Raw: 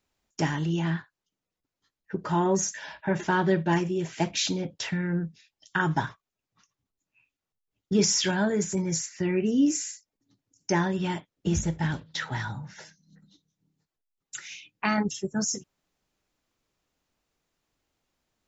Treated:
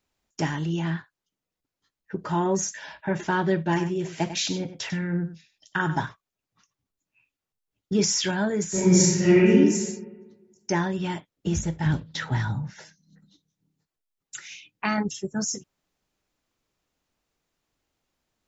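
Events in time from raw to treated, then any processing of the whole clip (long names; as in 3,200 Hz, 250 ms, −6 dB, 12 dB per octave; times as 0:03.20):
0:03.59–0:06.04: single-tap delay 97 ms −11.5 dB
0:08.69–0:09.47: thrown reverb, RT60 1.3 s, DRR −11 dB
0:11.86–0:12.70: low-shelf EQ 390 Hz +9 dB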